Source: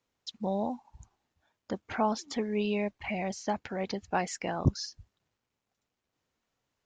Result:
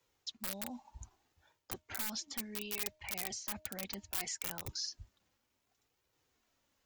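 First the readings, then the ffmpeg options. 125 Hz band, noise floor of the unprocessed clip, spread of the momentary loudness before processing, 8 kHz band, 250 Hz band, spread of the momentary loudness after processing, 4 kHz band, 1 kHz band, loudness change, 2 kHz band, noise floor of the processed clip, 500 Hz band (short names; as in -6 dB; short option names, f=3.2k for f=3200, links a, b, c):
-17.5 dB, -85 dBFS, 10 LU, +3.0 dB, -15.5 dB, 11 LU, -0.5 dB, -16.5 dB, -7.0 dB, -7.0 dB, -82 dBFS, -18.0 dB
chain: -filter_complex "[0:a]acrossover=split=170|1600[a][b][c];[a]acompressor=threshold=-43dB:ratio=4[d];[b]acompressor=threshold=-42dB:ratio=4[e];[c]acompressor=threshold=-40dB:ratio=4[f];[d][e][f]amix=inputs=3:normalize=0,lowpass=f=3.1k:p=1,acrossover=split=120[g][h];[h]aeval=exprs='(mod(35.5*val(0)+1,2)-1)/35.5':c=same[i];[g][i]amix=inputs=2:normalize=0,flanger=delay=2:depth=1.8:regen=-34:speed=0.66:shape=triangular,areverse,acompressor=threshold=-50dB:ratio=6,areverse,aemphasis=mode=production:type=75fm,bandreject=f=309.2:t=h:w=4,bandreject=f=618.4:t=h:w=4,bandreject=f=927.6:t=h:w=4,volume=7dB"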